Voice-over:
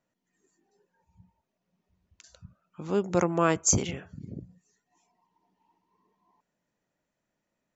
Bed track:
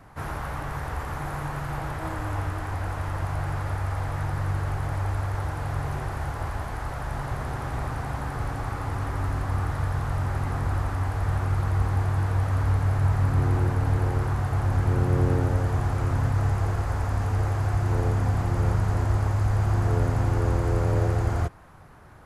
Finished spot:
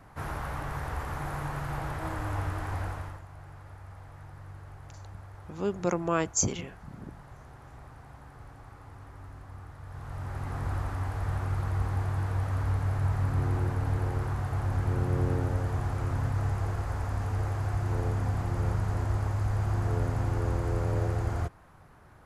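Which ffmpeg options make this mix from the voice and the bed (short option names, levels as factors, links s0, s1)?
-filter_complex "[0:a]adelay=2700,volume=0.668[s0];[1:a]volume=3.16,afade=t=out:st=2.8:d=0.42:silence=0.16788,afade=t=in:st=9.83:d=0.85:silence=0.223872[s1];[s0][s1]amix=inputs=2:normalize=0"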